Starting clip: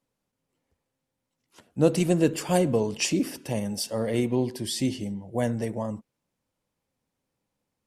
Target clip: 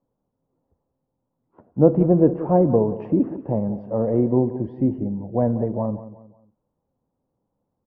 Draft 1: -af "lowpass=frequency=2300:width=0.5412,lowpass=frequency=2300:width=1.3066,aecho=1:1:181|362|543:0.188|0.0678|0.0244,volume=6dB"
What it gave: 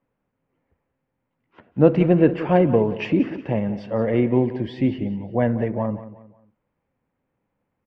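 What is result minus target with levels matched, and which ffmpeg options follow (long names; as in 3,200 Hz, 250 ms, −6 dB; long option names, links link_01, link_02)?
2,000 Hz band +19.5 dB
-af "lowpass=frequency=1000:width=0.5412,lowpass=frequency=1000:width=1.3066,aecho=1:1:181|362|543:0.188|0.0678|0.0244,volume=6dB"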